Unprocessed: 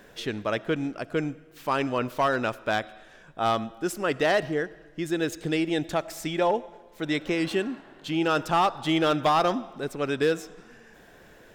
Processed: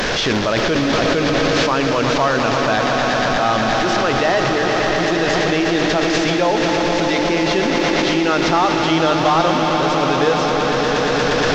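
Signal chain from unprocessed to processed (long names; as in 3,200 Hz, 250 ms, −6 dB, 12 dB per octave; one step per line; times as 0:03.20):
linear delta modulator 32 kbit/s, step −28 dBFS
mains-hum notches 50/100/150/200/250/300/350/400/450 Hz
echo that builds up and dies away 118 ms, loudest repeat 5, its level −10 dB
in parallel at +0.5 dB: compressor whose output falls as the input rises −30 dBFS, ratio −0.5
on the sum: surface crackle 380 per second −47 dBFS
level +5 dB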